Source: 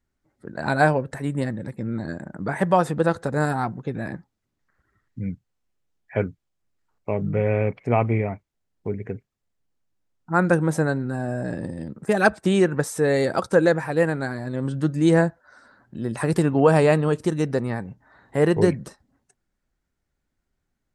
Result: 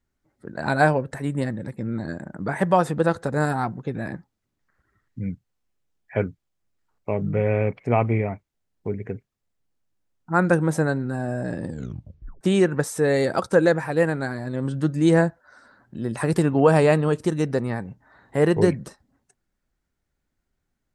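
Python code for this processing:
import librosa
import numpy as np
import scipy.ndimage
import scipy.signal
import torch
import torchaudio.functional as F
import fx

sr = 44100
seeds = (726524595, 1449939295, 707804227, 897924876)

y = fx.edit(x, sr, fx.tape_stop(start_s=11.68, length_s=0.73), tone=tone)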